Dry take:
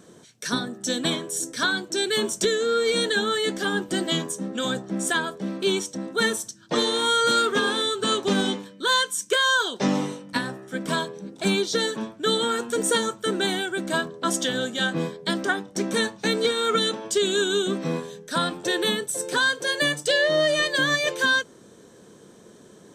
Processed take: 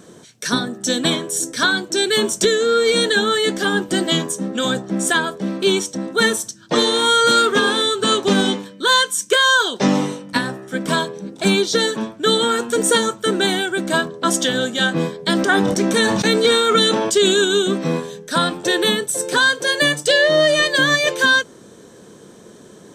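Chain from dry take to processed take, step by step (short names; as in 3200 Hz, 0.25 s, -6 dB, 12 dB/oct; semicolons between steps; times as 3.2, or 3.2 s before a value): 15.14–17.45 sustainer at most 25 dB/s; gain +6.5 dB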